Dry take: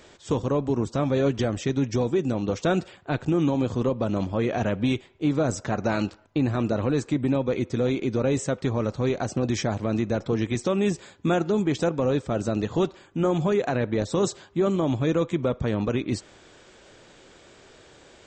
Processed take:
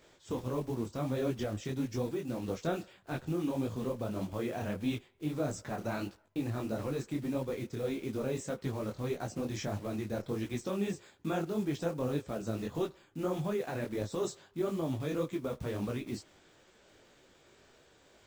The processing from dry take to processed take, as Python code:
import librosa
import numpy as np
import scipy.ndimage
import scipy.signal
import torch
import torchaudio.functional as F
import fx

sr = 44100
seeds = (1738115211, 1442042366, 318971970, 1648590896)

y = fx.block_float(x, sr, bits=5)
y = fx.detune_double(y, sr, cents=56)
y = F.gain(torch.from_numpy(y), -7.0).numpy()